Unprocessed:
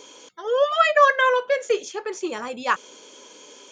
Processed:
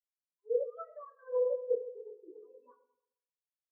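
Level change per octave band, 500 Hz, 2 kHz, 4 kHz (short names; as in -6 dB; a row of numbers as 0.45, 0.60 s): -11.5 dB, under -40 dB, under -40 dB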